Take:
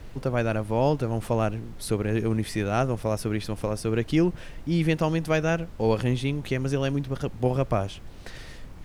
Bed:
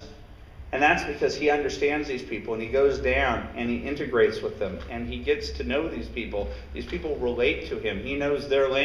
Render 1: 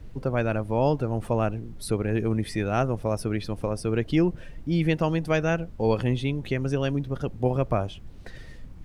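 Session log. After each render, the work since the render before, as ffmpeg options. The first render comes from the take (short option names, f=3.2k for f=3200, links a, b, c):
-af "afftdn=nr=9:nf=-42"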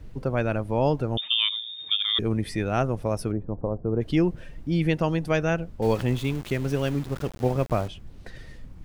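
-filter_complex "[0:a]asettb=1/sr,asplit=3[a][b][c];[a]atrim=end=1.174[d];[b]atrim=start=1.17:end=2.19,asetpts=PTS-STARTPTS,afade=t=in:d=0.004:c=qsin,afade=t=out:st=1.016:d=0.004:c=qsin,lowpass=f=3.1k:t=q:w=0.5098,lowpass=f=3.1k:t=q:w=0.6013,lowpass=f=3.1k:t=q:w=0.9,lowpass=f=3.1k:t=q:w=2.563,afreqshift=-3700[e];[c]atrim=start=2.186[f];[d][e]acrossfade=d=0.004:c1=hsin:c2=qsin[g];[g][f]acrossfade=d=0.004:c1=qsin:c2=hsin,asplit=3[h][i][j];[h]afade=t=out:st=3.31:d=0.02[k];[i]lowpass=f=1k:w=0.5412,lowpass=f=1k:w=1.3066,afade=t=in:st=3.31:d=0.02,afade=t=out:st=4:d=0.02[l];[j]afade=t=in:st=4:d=0.02[m];[k][l][m]amix=inputs=3:normalize=0,asettb=1/sr,asplit=3[n][o][p];[n]atrim=end=5.824[q];[o]atrim=start=5.82:end=7.88,asetpts=PTS-STARTPTS,afade=t=in:d=0.004:c=qsin,afade=t=out:st=2.056:d=0.004:c=qsin,aeval=exprs='val(0)*gte(abs(val(0)),0.0168)':c=same[r];[p]atrim=start=7.876[s];[q][r]acrossfade=d=0.004:c1=hsin:c2=qsin[t];[t][s]acrossfade=d=0.004:c1=qsin:c2=hsin"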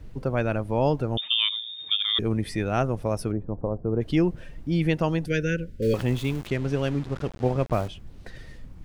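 -filter_complex "[0:a]asettb=1/sr,asplit=3[a][b][c];[a]atrim=end=5.264[d];[b]atrim=start=5.26:end=5.94,asetpts=PTS-STARTPTS,afade=t=in:d=0.004:c=qsin,afade=t=out:st=0.676:d=0.004:c=qsin,asuperstop=centerf=910:order=20:qfactor=1.1[e];[c]atrim=start=5.936[f];[d][e]acrossfade=d=0.004:c1=hsin:c2=qsin[g];[g][f]acrossfade=d=0.004:c1=qsin:c2=hsin,asettb=1/sr,asplit=3[h][i][j];[h]atrim=end=6.474[k];[i]atrim=start=6.47:end=7.73,asetpts=PTS-STARTPTS,afade=t=in:d=0.004:c=qsin,afade=t=out:st=1.256:d=0.004:c=qsin,adynamicsmooth=sensitivity=4.5:basefreq=5.5k[l];[j]atrim=start=7.726[m];[k][l]acrossfade=d=0.004:c1=hsin:c2=qsin[n];[n][m]acrossfade=d=0.004:c1=qsin:c2=hsin"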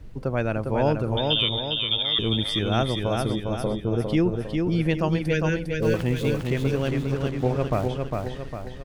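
-af "aecho=1:1:404|808|1212|1616|2020|2424:0.631|0.303|0.145|0.0698|0.0335|0.0161"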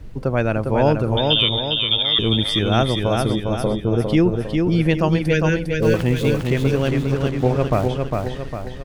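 -af "volume=5.5dB"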